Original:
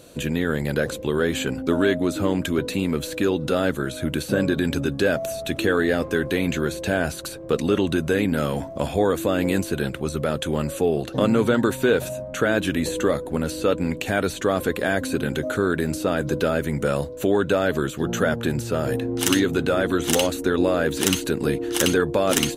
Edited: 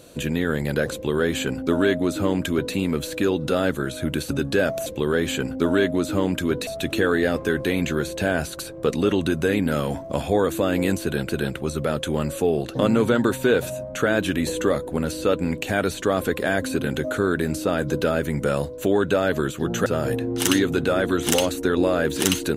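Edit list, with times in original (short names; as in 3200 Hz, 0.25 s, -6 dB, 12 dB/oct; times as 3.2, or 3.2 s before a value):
0.93–2.74 copy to 5.33
4.3–4.77 cut
9.68–9.95 loop, 2 plays
18.25–18.67 cut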